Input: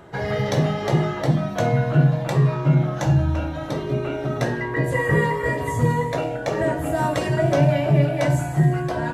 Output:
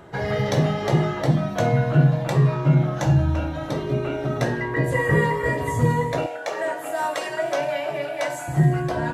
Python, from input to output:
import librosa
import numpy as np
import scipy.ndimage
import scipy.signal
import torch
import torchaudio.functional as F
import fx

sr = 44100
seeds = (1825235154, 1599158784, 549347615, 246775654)

y = fx.highpass(x, sr, hz=620.0, slope=12, at=(6.26, 8.48))